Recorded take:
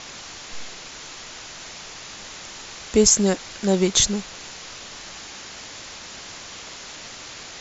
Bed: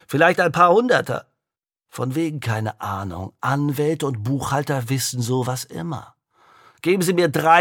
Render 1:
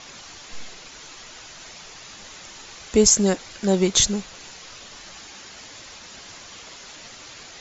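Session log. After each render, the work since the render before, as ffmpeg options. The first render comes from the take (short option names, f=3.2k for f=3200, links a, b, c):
-af "afftdn=nr=6:nf=-39"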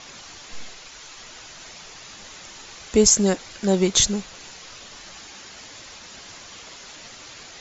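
-filter_complex "[0:a]asettb=1/sr,asplit=3[a][b][c];[a]atrim=end=0.724[d];[b]atrim=start=0.72:end=1.18,asetpts=PTS-STARTPTS,afade=t=in:d=0.004:c=qsin,afade=t=out:st=0.456:d=0.004:c=qsin,equalizer=f=230:t=o:w=2.1:g=-5.5[e];[c]atrim=start=1.176[f];[d][e]acrossfade=d=0.004:c1=hsin:c2=qsin[g];[g][f]acrossfade=d=0.004:c1=qsin:c2=hsin"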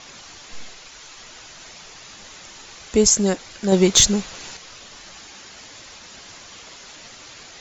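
-filter_complex "[0:a]asettb=1/sr,asplit=3[a][b][c];[a]atrim=end=3.724[d];[b]atrim=start=3.72:end=4.57,asetpts=PTS-STARTPTS,afade=t=in:d=0.004:c=qsin,afade=t=out:st=0.846:d=0.004:c=qsin,acontrast=22[e];[c]atrim=start=4.566[f];[d][e]acrossfade=d=0.004:c1=hsin:c2=qsin[g];[g][f]acrossfade=d=0.004:c1=qsin:c2=hsin"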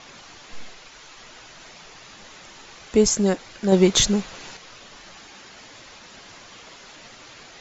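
-af "lowpass=f=3.3k:p=1,equalizer=f=66:t=o:w=0.55:g=-9"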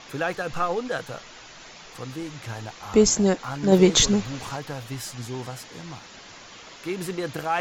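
-filter_complex "[1:a]volume=-12dB[a];[0:a][a]amix=inputs=2:normalize=0"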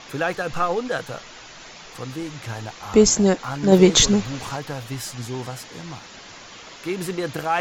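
-af "volume=3dB"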